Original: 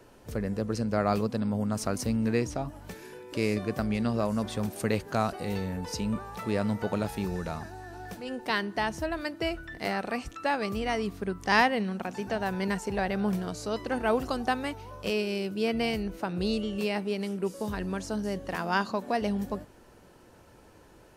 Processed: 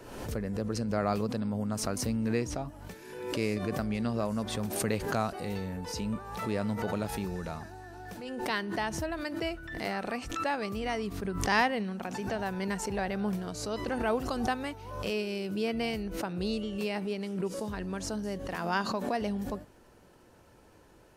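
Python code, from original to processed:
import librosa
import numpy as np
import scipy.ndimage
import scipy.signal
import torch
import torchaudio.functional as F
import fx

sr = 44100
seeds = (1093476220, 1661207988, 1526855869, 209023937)

y = fx.high_shelf(x, sr, hz=11000.0, db=-8.5, at=(17.13, 17.93))
y = fx.pre_swell(y, sr, db_per_s=52.0)
y = F.gain(torch.from_numpy(y), -3.5).numpy()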